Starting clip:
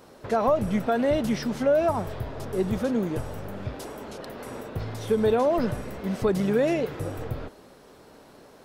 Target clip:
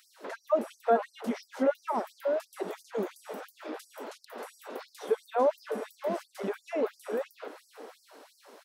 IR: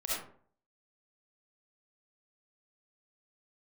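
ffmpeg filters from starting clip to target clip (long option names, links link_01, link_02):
-filter_complex "[0:a]asplit=2[link_01][link_02];[link_02]adelay=583.1,volume=-7dB,highshelf=frequency=4000:gain=-13.1[link_03];[link_01][link_03]amix=inputs=2:normalize=0,asubboost=boost=6:cutoff=79,acrossover=split=1600[link_04][link_05];[link_05]acompressor=threshold=-50dB:ratio=6[link_06];[link_04][link_06]amix=inputs=2:normalize=0,afftfilt=real='re*gte(b*sr/1024,200*pow(4600/200,0.5+0.5*sin(2*PI*2.9*pts/sr)))':imag='im*gte(b*sr/1024,200*pow(4600/200,0.5+0.5*sin(2*PI*2.9*pts/sr)))':win_size=1024:overlap=0.75"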